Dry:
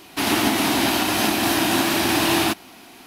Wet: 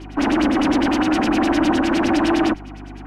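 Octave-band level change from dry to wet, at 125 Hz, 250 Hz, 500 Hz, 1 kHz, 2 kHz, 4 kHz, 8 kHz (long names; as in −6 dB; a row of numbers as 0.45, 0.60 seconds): 0.0, +5.5, +2.5, +0.5, −2.5, −7.5, −12.0 decibels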